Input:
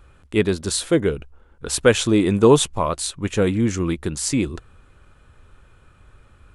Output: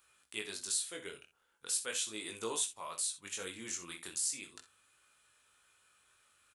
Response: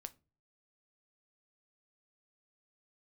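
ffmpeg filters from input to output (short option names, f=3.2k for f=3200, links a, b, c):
-filter_complex "[0:a]aderivative,acompressor=threshold=-41dB:ratio=2,flanger=delay=17.5:depth=5.5:speed=0.39,aecho=1:1:50|62:0.178|0.2,asplit=2[a][b];[1:a]atrim=start_sample=2205,asetrate=37926,aresample=44100[c];[b][c]afir=irnorm=-1:irlink=0,volume=-0.5dB[d];[a][d]amix=inputs=2:normalize=0"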